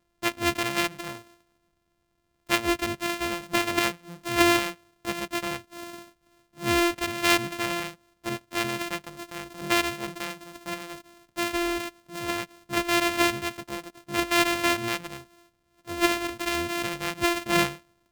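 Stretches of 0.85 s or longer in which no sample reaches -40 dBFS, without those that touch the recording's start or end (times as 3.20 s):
1.21–2.49 s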